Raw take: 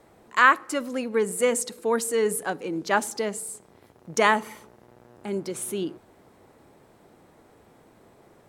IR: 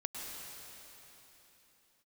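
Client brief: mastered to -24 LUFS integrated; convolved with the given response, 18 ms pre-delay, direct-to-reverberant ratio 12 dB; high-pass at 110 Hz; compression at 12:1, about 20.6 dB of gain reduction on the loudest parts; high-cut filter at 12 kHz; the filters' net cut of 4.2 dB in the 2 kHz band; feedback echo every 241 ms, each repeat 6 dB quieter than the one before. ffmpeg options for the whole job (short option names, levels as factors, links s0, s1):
-filter_complex "[0:a]highpass=110,lowpass=12000,equalizer=f=2000:t=o:g=-5.5,acompressor=threshold=0.0158:ratio=12,aecho=1:1:241|482|723|964|1205|1446:0.501|0.251|0.125|0.0626|0.0313|0.0157,asplit=2[s0][s1];[1:a]atrim=start_sample=2205,adelay=18[s2];[s1][s2]afir=irnorm=-1:irlink=0,volume=0.224[s3];[s0][s3]amix=inputs=2:normalize=0,volume=5.96"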